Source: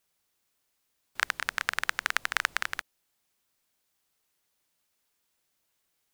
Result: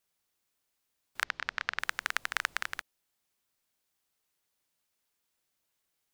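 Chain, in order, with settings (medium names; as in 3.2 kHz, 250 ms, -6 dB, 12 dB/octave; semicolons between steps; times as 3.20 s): 1.23–1.79 s: low-pass 5.4 kHz 24 dB/octave; trim -4 dB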